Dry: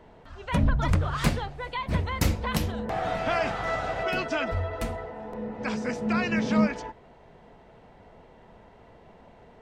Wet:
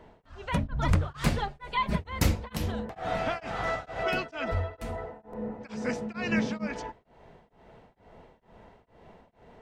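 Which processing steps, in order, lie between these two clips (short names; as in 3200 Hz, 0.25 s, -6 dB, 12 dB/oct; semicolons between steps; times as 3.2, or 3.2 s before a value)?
1.38–1.99 comb 4.9 ms, depth 95%; 4.9–5.6 bell 3700 Hz -3.5 dB -> -10.5 dB 1.9 oct; beating tremolo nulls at 2.2 Hz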